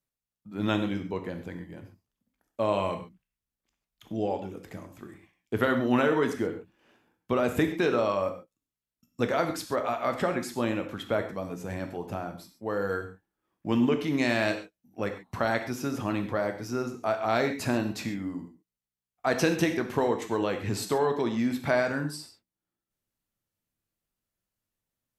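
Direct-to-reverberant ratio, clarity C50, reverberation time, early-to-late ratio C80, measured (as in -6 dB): 6.0 dB, 9.5 dB, no single decay rate, 12.0 dB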